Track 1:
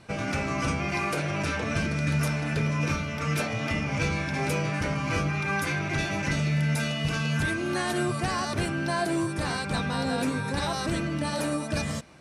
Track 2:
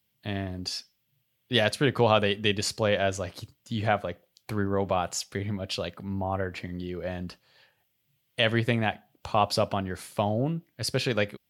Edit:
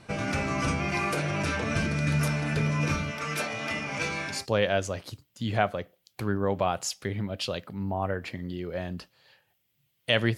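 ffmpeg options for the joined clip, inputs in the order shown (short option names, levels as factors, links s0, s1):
-filter_complex "[0:a]asettb=1/sr,asplit=3[s0][s1][s2];[s0]atrim=end=3.114[s3];[s1]atrim=start=3.11:end=4.46,asetpts=PTS-STARTPTS,afade=t=in:d=0.004:c=qsin,afade=t=out:st=1.346:d=0.004:c=qsin,highpass=f=450:p=1[s4];[s2]atrim=start=4.456[s5];[s3][s4]acrossfade=d=0.004:c1=hsin:c2=qsin[s6];[s6][s5]acrossfade=d=0.004:c1=qsin:c2=hsin,apad=whole_dur=10.37,atrim=end=10.37,atrim=end=4.46,asetpts=PTS-STARTPTS[s7];[1:a]atrim=start=2.56:end=8.67,asetpts=PTS-STARTPTS[s8];[s7][s8]acrossfade=d=0.2:c1=tri:c2=tri"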